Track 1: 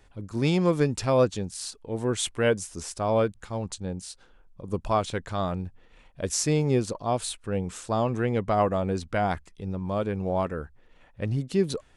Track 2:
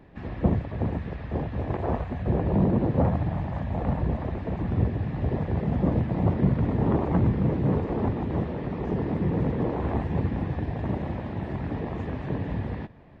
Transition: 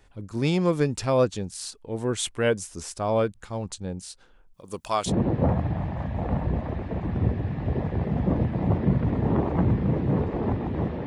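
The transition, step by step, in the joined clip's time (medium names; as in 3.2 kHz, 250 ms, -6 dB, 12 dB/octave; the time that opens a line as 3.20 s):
track 1
4.54–5.13 s: tilt EQ +3.5 dB/octave
5.09 s: go over to track 2 from 2.65 s, crossfade 0.08 s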